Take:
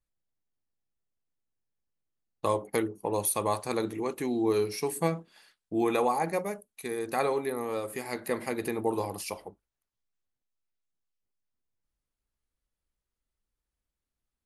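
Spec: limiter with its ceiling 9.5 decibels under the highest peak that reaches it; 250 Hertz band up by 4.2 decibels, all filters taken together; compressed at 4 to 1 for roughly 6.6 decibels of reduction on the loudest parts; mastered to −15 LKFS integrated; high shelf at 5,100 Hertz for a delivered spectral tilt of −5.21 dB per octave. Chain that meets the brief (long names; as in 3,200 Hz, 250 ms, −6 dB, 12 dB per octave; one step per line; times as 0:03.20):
parametric band 250 Hz +6 dB
high-shelf EQ 5,100 Hz −5.5 dB
downward compressor 4 to 1, threshold −27 dBFS
level +21 dB
brickwall limiter −4 dBFS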